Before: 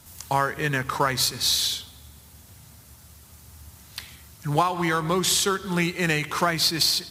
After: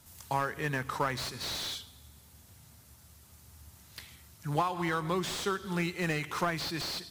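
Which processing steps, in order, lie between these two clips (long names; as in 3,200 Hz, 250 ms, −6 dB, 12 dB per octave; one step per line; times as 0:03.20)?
slew-rate limiting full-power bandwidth 180 Hz
level −7.5 dB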